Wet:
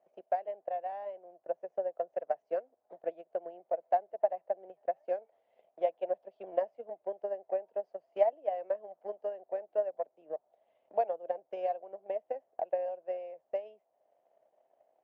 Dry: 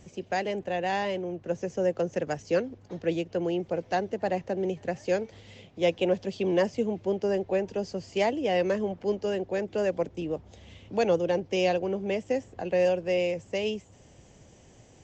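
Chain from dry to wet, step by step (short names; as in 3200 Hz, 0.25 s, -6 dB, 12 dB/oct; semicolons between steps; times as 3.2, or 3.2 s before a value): ladder band-pass 700 Hz, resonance 75%; transient shaper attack +11 dB, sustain -3 dB; gain -6 dB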